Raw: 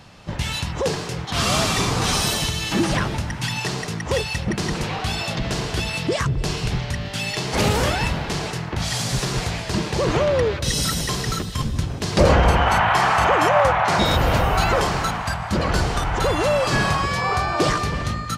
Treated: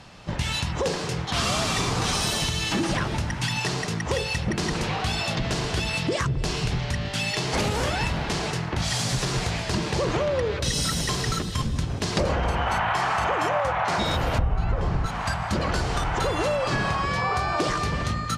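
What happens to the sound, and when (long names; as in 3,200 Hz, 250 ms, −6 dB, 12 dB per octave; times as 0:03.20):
0:14.38–0:15.06: RIAA equalisation playback
0:16.56–0:17.36: high-shelf EQ 6,000 Hz −9 dB
whole clip: low-pass filter 11,000 Hz 12 dB per octave; hum removal 49.33 Hz, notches 11; downward compressor, threshold −21 dBFS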